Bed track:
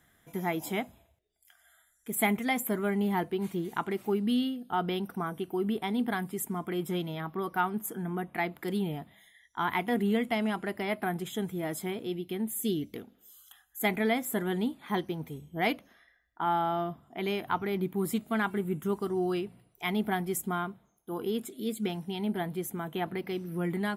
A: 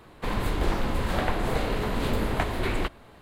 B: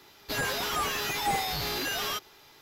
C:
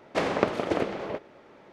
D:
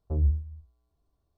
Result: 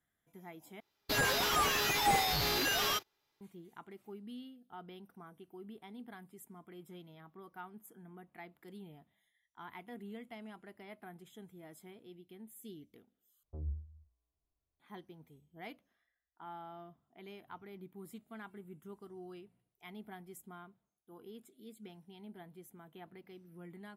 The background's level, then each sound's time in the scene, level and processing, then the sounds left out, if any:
bed track -19.5 dB
0.80 s: replace with B -0.5 dB + gate -46 dBFS, range -25 dB
13.43 s: replace with D -15.5 dB
not used: A, C

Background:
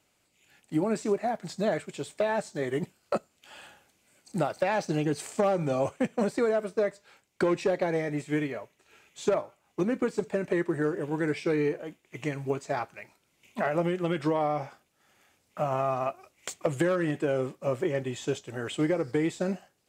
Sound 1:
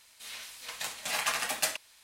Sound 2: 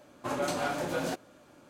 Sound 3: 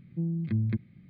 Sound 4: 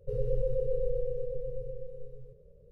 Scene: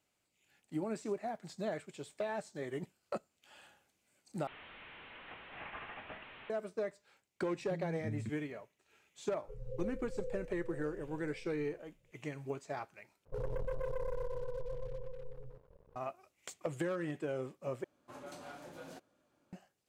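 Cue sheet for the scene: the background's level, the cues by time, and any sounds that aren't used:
background -10.5 dB
4.47 s: replace with 1 -13 dB + one-bit delta coder 16 kbps, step -32.5 dBFS
7.53 s: add 3 -13 dB
9.41 s: add 4 -10.5 dB + barber-pole phaser -2.1 Hz
13.25 s: replace with 4 -14 dB + waveshaping leveller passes 3
17.84 s: replace with 2 -18 dB

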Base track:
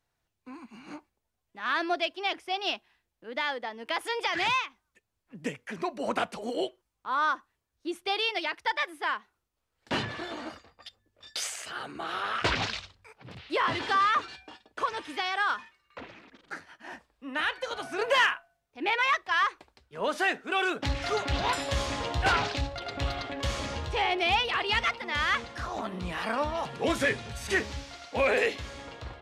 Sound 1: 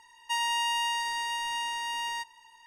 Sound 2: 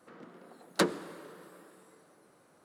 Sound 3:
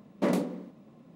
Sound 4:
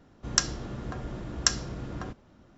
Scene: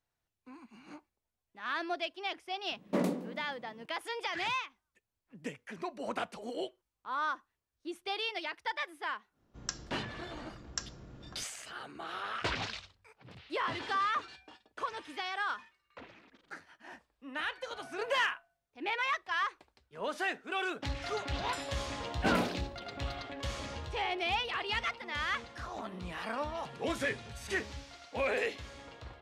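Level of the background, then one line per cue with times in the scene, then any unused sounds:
base track -7 dB
2.71 s: add 3 -4 dB + modulated delay 160 ms, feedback 68%, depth 215 cents, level -24 dB
9.31 s: add 4 -14 dB, fades 0.10 s
22.02 s: add 3 -6 dB + flutter echo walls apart 5.8 m, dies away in 0.53 s
not used: 1, 2

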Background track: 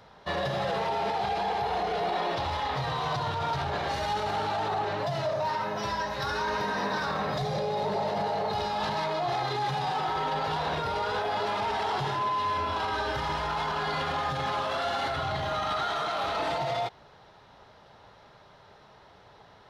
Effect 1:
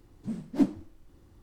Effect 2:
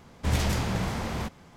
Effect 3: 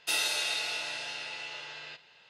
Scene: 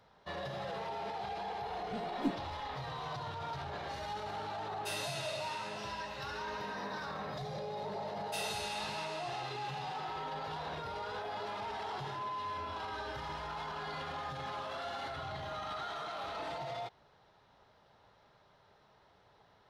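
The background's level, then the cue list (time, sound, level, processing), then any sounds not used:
background track -11 dB
1.65 s: add 1 -10.5 dB
4.78 s: add 3 -11.5 dB
8.25 s: add 3 -11 dB
not used: 2

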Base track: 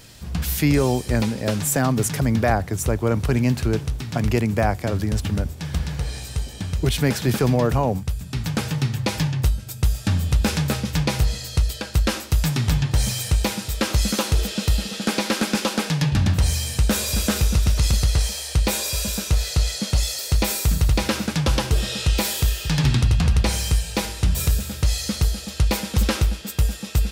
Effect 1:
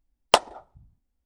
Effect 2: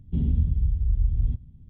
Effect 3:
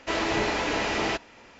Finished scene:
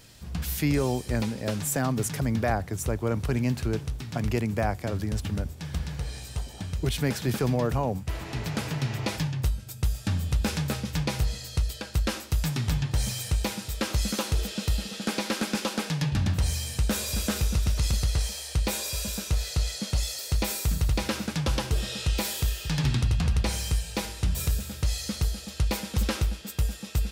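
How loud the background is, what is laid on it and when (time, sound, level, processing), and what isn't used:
base track -6.5 dB
6.03 s: add 1 -8.5 dB + slow attack 204 ms
8.00 s: add 3 -12 dB + peak limiter -18.5 dBFS
not used: 2

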